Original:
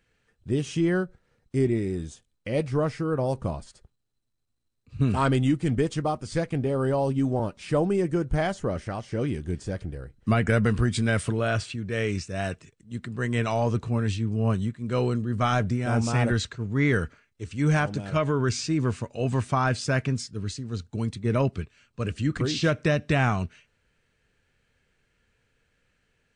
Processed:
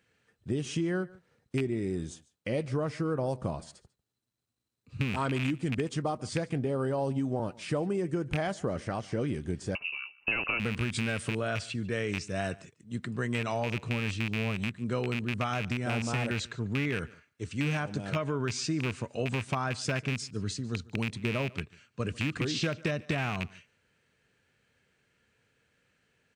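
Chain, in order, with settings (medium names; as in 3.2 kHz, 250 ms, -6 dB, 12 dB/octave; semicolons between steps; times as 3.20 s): rattle on loud lows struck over -23 dBFS, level -16 dBFS; high-pass 100 Hz; compression, threshold -27 dBFS, peak gain reduction 10.5 dB; on a send: delay 145 ms -22.5 dB; 9.75–10.60 s: on the sum: frequency inversion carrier 2.8 kHz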